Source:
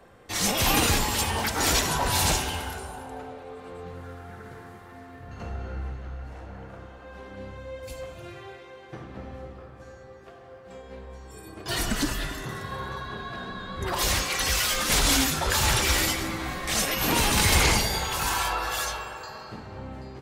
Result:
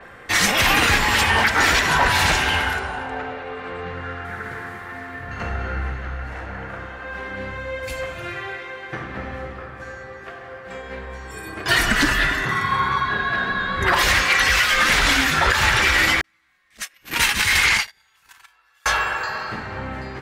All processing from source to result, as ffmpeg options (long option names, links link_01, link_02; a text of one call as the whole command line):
ffmpeg -i in.wav -filter_complex "[0:a]asettb=1/sr,asplit=3[link_01][link_02][link_03];[link_01]atrim=end=2.794[link_04];[link_02]atrim=start=2.79:end=4.25,asetpts=PTS-STARTPTS,afade=type=in:duration=0.004:curve=qsin,afade=type=out:start_time=1.456:duration=0.004:curve=qsin,lowpass=5100,aeval=exprs='val(0)+0.000794*sin(2*PI*2800*n/s)':channel_layout=same[link_05];[link_03]atrim=start=4.246[link_06];[link_04][link_05]acrossfade=duration=0.004:curve1=hsin:curve2=qsin[link_07];[link_07][link_06]acrossfade=duration=0.004:curve1=qsin:curve2=hsin,asettb=1/sr,asplit=3[link_08][link_09][link_10];[link_08]atrim=end=12.514[link_11];[link_09]atrim=start=12.51:end=13.09,asetpts=PTS-STARTPTS,afade=type=in:duration=0.004:curve=qsin,afade=type=out:start_time=0.576:duration=0.004:curve=qsin,highpass=frequency=120:poles=1,aecho=1:1:0.9:0.62,atrim=end_sample=25578[link_12];[link_10]atrim=start=13.086[link_13];[link_11][link_12]acrossfade=duration=0.004:curve1=hsin:curve2=qsin[link_14];[link_14][link_13]acrossfade=duration=0.004:curve1=qsin:curve2=hsin,asettb=1/sr,asplit=3[link_15][link_16][link_17];[link_15]atrim=end=16.214[link_18];[link_16]atrim=start=16.21:end=18.86,asetpts=PTS-STARTPTS,afade=type=in:duration=0.004:curve=qsin,afade=type=out:start_time=2.646:duration=0.004:curve=qsin,agate=range=-45dB:threshold=-22dB:ratio=16:release=100:detection=peak,tiltshelf=frequency=1300:gain=-5.5,acrossover=split=560[link_19][link_20];[link_20]adelay=30[link_21];[link_19][link_21]amix=inputs=2:normalize=0,atrim=end_sample=116865[link_22];[link_17]atrim=start=18.856[link_23];[link_18][link_22]acrossfade=duration=0.004:curve1=hsin:curve2=qsin[link_24];[link_24][link_23]acrossfade=duration=0.004:curve1=qsin:curve2=hsin,equalizer=frequency=1800:width=1:gain=12.5,alimiter=limit=-13dB:level=0:latency=1:release=239,adynamicequalizer=threshold=0.00794:dfrequency=6500:dqfactor=0.7:tfrequency=6500:tqfactor=0.7:attack=5:release=100:ratio=0.375:range=4:mode=cutabove:tftype=highshelf,volume=6.5dB" out.wav